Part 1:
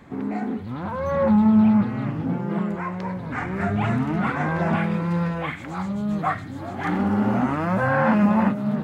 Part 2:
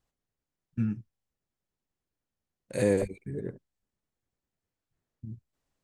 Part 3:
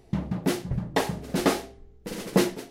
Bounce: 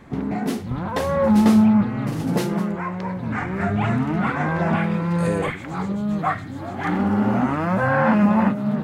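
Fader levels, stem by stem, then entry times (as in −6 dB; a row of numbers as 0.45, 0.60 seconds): +1.5, 0.0, −2.5 decibels; 0.00, 2.45, 0.00 seconds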